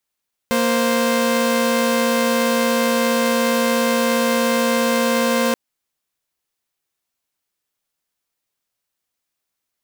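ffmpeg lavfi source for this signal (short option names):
-f lavfi -i "aevalsrc='0.158*((2*mod(233.08*t,1)-1)+(2*mod(523.25*t,1)-1))':d=5.03:s=44100"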